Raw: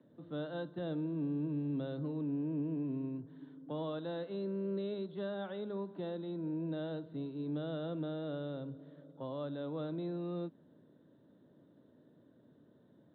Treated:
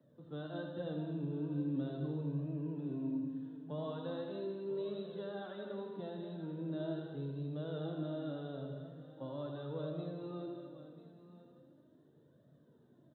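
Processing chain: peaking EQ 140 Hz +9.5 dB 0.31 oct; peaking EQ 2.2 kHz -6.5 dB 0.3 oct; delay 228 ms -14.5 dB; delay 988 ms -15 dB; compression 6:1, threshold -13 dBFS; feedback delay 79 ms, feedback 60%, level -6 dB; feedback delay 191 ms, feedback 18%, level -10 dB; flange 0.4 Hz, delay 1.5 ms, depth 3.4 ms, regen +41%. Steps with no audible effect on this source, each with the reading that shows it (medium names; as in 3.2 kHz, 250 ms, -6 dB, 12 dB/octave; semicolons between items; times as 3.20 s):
compression, threshold -13 dBFS: peak at its input -23.5 dBFS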